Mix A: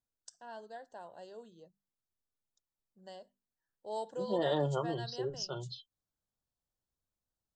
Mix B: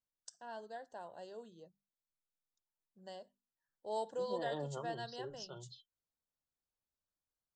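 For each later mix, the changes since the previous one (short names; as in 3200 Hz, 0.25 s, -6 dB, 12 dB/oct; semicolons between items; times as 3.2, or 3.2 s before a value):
second voice -10.0 dB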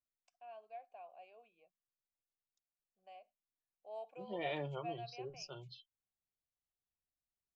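first voice: add vowel filter a; master: remove Butterworth band-stop 2300 Hz, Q 1.4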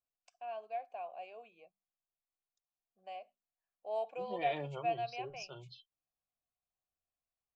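first voice +10.0 dB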